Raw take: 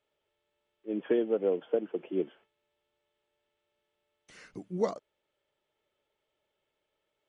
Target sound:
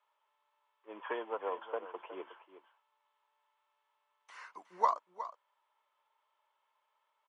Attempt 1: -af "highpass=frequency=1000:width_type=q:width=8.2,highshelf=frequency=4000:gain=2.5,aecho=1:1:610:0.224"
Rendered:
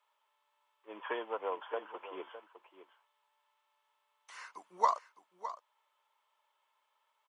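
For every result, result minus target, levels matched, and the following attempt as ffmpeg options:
echo 246 ms late; 8,000 Hz band +7.5 dB
-af "highpass=frequency=1000:width_type=q:width=8.2,highshelf=frequency=4000:gain=2.5,aecho=1:1:364:0.224"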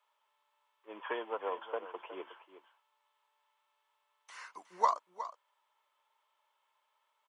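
8,000 Hz band +7.0 dB
-af "highpass=frequency=1000:width_type=q:width=8.2,highshelf=frequency=4000:gain=-8,aecho=1:1:364:0.224"

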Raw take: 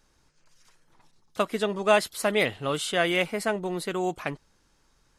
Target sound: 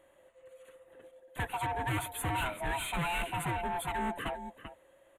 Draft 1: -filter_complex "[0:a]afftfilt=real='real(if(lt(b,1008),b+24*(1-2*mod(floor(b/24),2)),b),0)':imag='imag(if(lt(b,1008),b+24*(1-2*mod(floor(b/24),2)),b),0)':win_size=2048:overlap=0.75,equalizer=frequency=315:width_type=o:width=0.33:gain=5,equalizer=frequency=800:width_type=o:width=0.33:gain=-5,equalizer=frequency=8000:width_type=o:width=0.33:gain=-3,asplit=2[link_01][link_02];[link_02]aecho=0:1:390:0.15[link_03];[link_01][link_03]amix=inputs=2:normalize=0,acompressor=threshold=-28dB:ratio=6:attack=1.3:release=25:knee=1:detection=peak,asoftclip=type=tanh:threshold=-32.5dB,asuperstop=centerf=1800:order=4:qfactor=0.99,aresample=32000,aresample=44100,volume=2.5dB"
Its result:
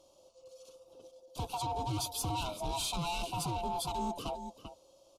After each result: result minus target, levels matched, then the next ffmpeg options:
downward compressor: peak gain reduction +14 dB; 2,000 Hz band −11.0 dB
-filter_complex "[0:a]afftfilt=real='real(if(lt(b,1008),b+24*(1-2*mod(floor(b/24),2)),b),0)':imag='imag(if(lt(b,1008),b+24*(1-2*mod(floor(b/24),2)),b),0)':win_size=2048:overlap=0.75,equalizer=frequency=315:width_type=o:width=0.33:gain=5,equalizer=frequency=800:width_type=o:width=0.33:gain=-5,equalizer=frequency=8000:width_type=o:width=0.33:gain=-3,asplit=2[link_01][link_02];[link_02]aecho=0:1:390:0.15[link_03];[link_01][link_03]amix=inputs=2:normalize=0,asoftclip=type=tanh:threshold=-32.5dB,asuperstop=centerf=1800:order=4:qfactor=0.99,aresample=32000,aresample=44100,volume=2.5dB"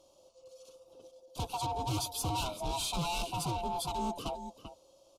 2,000 Hz band −10.5 dB
-filter_complex "[0:a]afftfilt=real='real(if(lt(b,1008),b+24*(1-2*mod(floor(b/24),2)),b),0)':imag='imag(if(lt(b,1008),b+24*(1-2*mod(floor(b/24),2)),b),0)':win_size=2048:overlap=0.75,equalizer=frequency=315:width_type=o:width=0.33:gain=5,equalizer=frequency=800:width_type=o:width=0.33:gain=-5,equalizer=frequency=8000:width_type=o:width=0.33:gain=-3,asplit=2[link_01][link_02];[link_02]aecho=0:1:390:0.15[link_03];[link_01][link_03]amix=inputs=2:normalize=0,asoftclip=type=tanh:threshold=-32.5dB,asuperstop=centerf=5200:order=4:qfactor=0.99,aresample=32000,aresample=44100,volume=2.5dB"

